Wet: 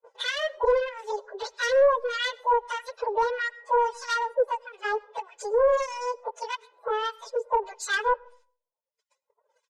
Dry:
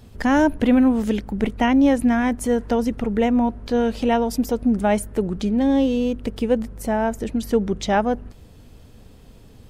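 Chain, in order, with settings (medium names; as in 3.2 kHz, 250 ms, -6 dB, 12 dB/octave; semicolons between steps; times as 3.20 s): frequency-domain pitch shifter +12 st; low-pass 7.6 kHz 24 dB/octave; reverb removal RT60 1.4 s; steep high-pass 480 Hz 48 dB/octave; gate -59 dBFS, range -34 dB; comb 2 ms, depth 75%; in parallel at -1 dB: compression, threshold -28 dBFS, peak gain reduction 16.5 dB; on the sum: saturation -14 dBFS, distortion -13 dB; harmonic tremolo 1.6 Hz, depth 100%, crossover 1.4 kHz; on a send at -23 dB: reverberation RT60 0.50 s, pre-delay 65 ms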